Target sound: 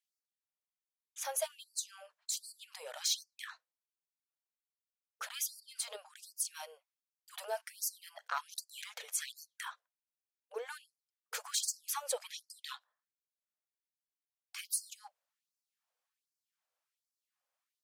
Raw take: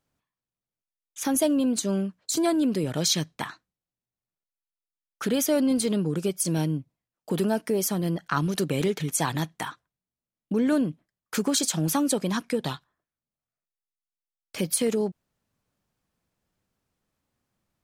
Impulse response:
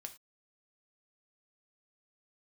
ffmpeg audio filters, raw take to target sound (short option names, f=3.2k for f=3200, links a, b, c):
-af "asoftclip=type=tanh:threshold=-16dB,afftfilt=real='re*gte(b*sr/1024,430*pow(4400/430,0.5+0.5*sin(2*PI*1.3*pts/sr)))':imag='im*gte(b*sr/1024,430*pow(4400/430,0.5+0.5*sin(2*PI*1.3*pts/sr)))':win_size=1024:overlap=0.75,volume=-7dB"